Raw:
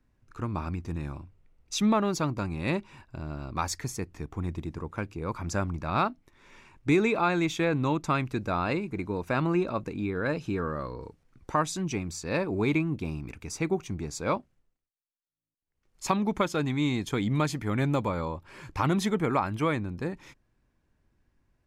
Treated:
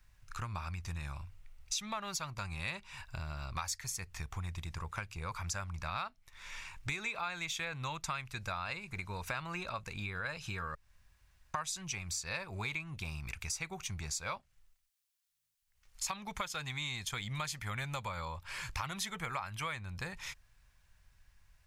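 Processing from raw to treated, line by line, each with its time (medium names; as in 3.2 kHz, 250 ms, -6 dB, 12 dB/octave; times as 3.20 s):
10.75–11.54 s: room tone
whole clip: amplifier tone stack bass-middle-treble 10-0-10; band-stop 440 Hz, Q 12; compression 4:1, threshold -51 dBFS; trim +13 dB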